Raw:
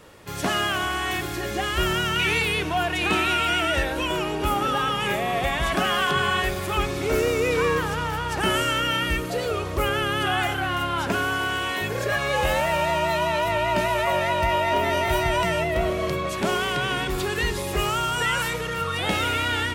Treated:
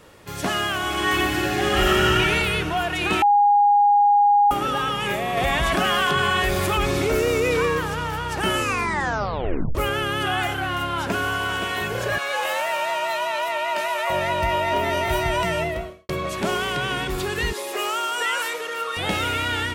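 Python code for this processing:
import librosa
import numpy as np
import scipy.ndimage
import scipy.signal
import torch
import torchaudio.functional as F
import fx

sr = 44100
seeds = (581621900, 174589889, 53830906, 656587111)

y = fx.reverb_throw(x, sr, start_s=0.8, length_s=1.3, rt60_s=2.8, drr_db=-4.0)
y = fx.env_flatten(y, sr, amount_pct=70, at=(5.37, 7.66))
y = fx.echo_throw(y, sr, start_s=10.7, length_s=0.87, ms=520, feedback_pct=55, wet_db=-9.0)
y = fx.highpass(y, sr, hz=600.0, slope=12, at=(12.18, 14.1))
y = fx.highpass(y, sr, hz=350.0, slope=24, at=(17.53, 18.97))
y = fx.edit(y, sr, fx.bleep(start_s=3.22, length_s=1.29, hz=819.0, db=-12.5),
    fx.tape_stop(start_s=8.53, length_s=1.22),
    fx.fade_out_span(start_s=15.67, length_s=0.42, curve='qua'), tone=tone)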